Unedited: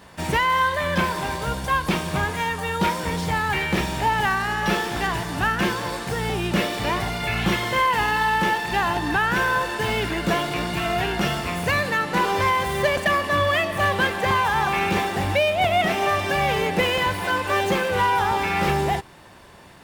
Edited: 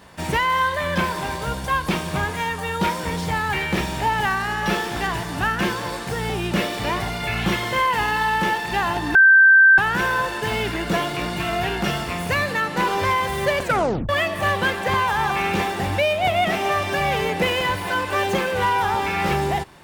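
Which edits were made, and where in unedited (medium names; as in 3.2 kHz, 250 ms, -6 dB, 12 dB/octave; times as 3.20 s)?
9.15 s: add tone 1.56 kHz -8 dBFS 0.63 s
12.99 s: tape stop 0.47 s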